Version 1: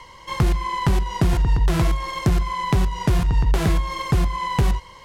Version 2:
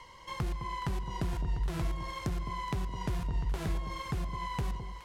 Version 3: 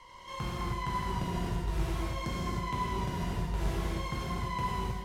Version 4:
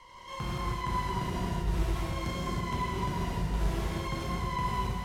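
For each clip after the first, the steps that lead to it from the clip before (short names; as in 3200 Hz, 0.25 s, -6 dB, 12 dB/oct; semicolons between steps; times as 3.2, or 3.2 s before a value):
compressor 1.5:1, threshold -34 dBFS, peak gain reduction 7 dB; on a send: echo with dull and thin repeats by turns 0.21 s, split 970 Hz, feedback 65%, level -9 dB; on the sum: gain -8.5 dB
non-linear reverb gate 0.34 s flat, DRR -7.5 dB; gain -5 dB
reverse delay 0.163 s, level -4 dB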